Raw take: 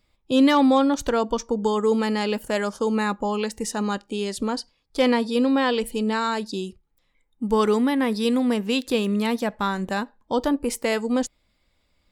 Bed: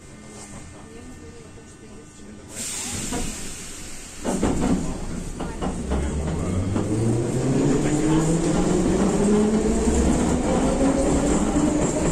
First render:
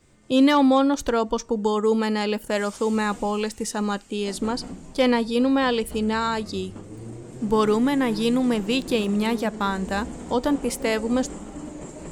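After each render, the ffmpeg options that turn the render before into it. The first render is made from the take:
-filter_complex "[1:a]volume=0.158[s0];[0:a][s0]amix=inputs=2:normalize=0"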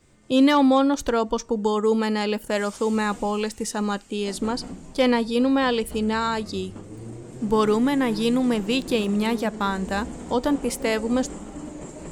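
-af anull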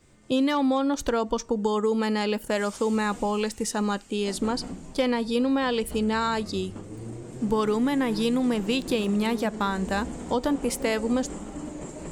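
-af "acompressor=threshold=0.1:ratio=6"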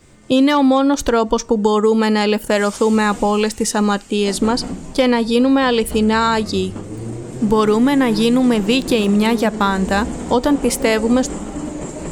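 -af "volume=3.16,alimiter=limit=0.708:level=0:latency=1"

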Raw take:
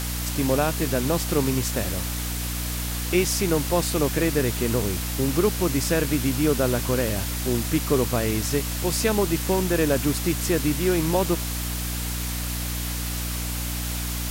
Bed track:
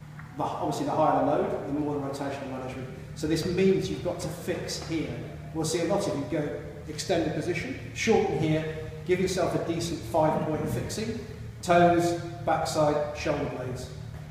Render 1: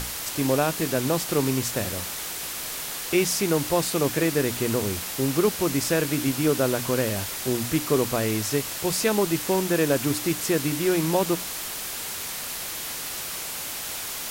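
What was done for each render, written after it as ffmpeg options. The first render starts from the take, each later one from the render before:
-af "bandreject=f=60:t=h:w=6,bandreject=f=120:t=h:w=6,bandreject=f=180:t=h:w=6,bandreject=f=240:t=h:w=6,bandreject=f=300:t=h:w=6"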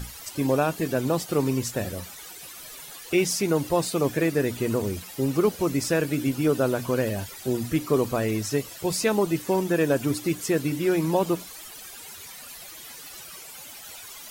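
-af "afftdn=nr=14:nf=-33"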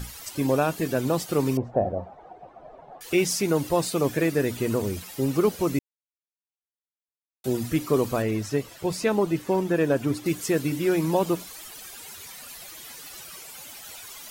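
-filter_complex "[0:a]asettb=1/sr,asplit=3[s0][s1][s2];[s0]atrim=end=1.574[s3];[s1]atrim=start=1.57:end=3.01,asetpts=PTS-STARTPTS,afade=t=in:d=0.004:c=qsin,afade=t=out:st=1.436:d=0.004:c=qsin,lowpass=f=720:t=q:w=5[s4];[s2]atrim=start=3.006[s5];[s3][s4]acrossfade=d=0.004:c1=hsin:c2=qsin[s6];[s6][s5]acrossfade=d=0.004:c1=qsin:c2=hsin,asettb=1/sr,asplit=3[s7][s8][s9];[s7]atrim=end=8.224[s10];[s8]atrim=start=8.22:end=10.26,asetpts=PTS-STARTPTS,afade=t=in:d=0.004:c=qsin,afade=t=out:st=2.036:d=0.004:c=qsin,highshelf=f=4100:g=-9[s11];[s9]atrim=start=10.256[s12];[s10][s11]acrossfade=d=0.004:c1=hsin:c2=qsin[s13];[s13][s12]acrossfade=d=0.004:c1=qsin:c2=hsin,asplit=3[s14][s15][s16];[s14]atrim=end=5.79,asetpts=PTS-STARTPTS,afade=t=out:st=5.786:d=0.004:c=hsin[s17];[s15]atrim=start=5.79:end=7.44,asetpts=PTS-STARTPTS,volume=0[s18];[s16]atrim=start=7.44,asetpts=PTS-STARTPTS,afade=t=in:d=0.004:c=hsin[s19];[s17][s18][s19]concat=n=3:v=0:a=1"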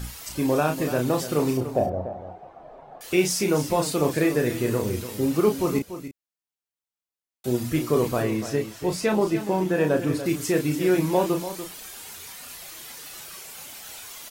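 -filter_complex "[0:a]asplit=2[s0][s1];[s1]adelay=33,volume=0.531[s2];[s0][s2]amix=inputs=2:normalize=0,asplit=2[s3][s4];[s4]aecho=0:1:290:0.266[s5];[s3][s5]amix=inputs=2:normalize=0"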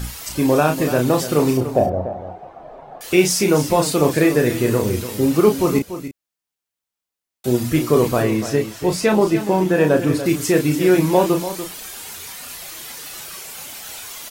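-af "volume=2.11"

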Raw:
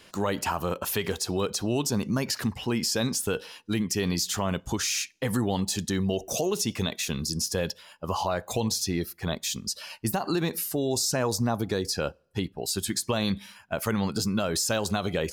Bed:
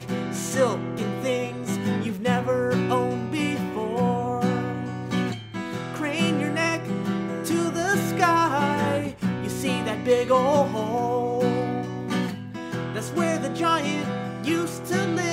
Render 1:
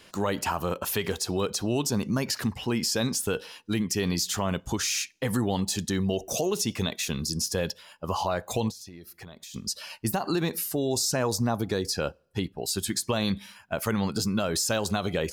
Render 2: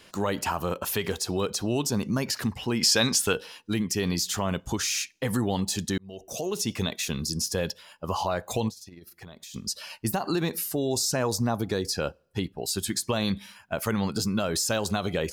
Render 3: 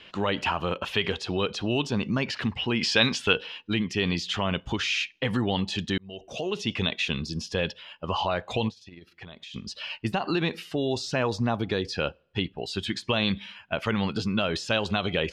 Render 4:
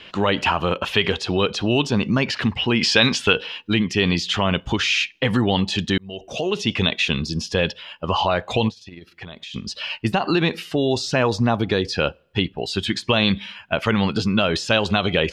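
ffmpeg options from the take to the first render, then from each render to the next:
-filter_complex "[0:a]asettb=1/sr,asplit=3[s0][s1][s2];[s0]atrim=end=8.704[s3];[s1]atrim=start=8.7:end=9.54,asetpts=PTS-STARTPTS,afade=t=in:d=0.004:c=qsin,afade=t=out:st=0.836:d=0.004:c=qsin,acompressor=threshold=0.01:ratio=16:attack=3.2:release=140:knee=1:detection=peak[s4];[s2]atrim=start=9.536[s5];[s3][s4]acrossfade=d=0.004:c1=hsin:c2=qsin[s6];[s6][s5]acrossfade=d=0.004:c1=qsin:c2=hsin"
-filter_complex "[0:a]asettb=1/sr,asplit=3[s0][s1][s2];[s0]atrim=end=2.814[s3];[s1]atrim=start=2.81:end=3.33,asetpts=PTS-STARTPTS,afade=t=in:d=0.004:c=qsin,afade=t=out:st=0.516:d=0.004:c=qsin,equalizer=f=2700:w=0.3:g=9[s4];[s2]atrim=start=3.326[s5];[s3][s4]acrossfade=d=0.004:c1=hsin:c2=qsin[s6];[s6][s5]acrossfade=d=0.004:c1=qsin:c2=hsin,asettb=1/sr,asplit=3[s7][s8][s9];[s7]atrim=end=8.684[s10];[s8]atrim=start=8.68:end=9.24,asetpts=PTS-STARTPTS,afade=t=in:d=0.004:c=qsin,afade=t=out:st=0.556:d=0.004:c=qsin,tremolo=f=20:d=0.519[s11];[s9]atrim=start=9.236[s12];[s10][s11]acrossfade=d=0.004:c1=hsin:c2=qsin[s13];[s13][s12]acrossfade=d=0.004:c1=qsin:c2=hsin,asplit=2[s14][s15];[s14]atrim=end=5.98,asetpts=PTS-STARTPTS,afade=t=out:st=5.976:d=0.004:c=hsin[s16];[s15]atrim=start=5.98,asetpts=PTS-STARTPTS,afade=t=in:d=0.73[s17];[s16][s17]concat=n=2:v=0:a=1"
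-af "lowpass=f=3000:t=q:w=2.8"
-af "volume=2.24,alimiter=limit=0.794:level=0:latency=1"

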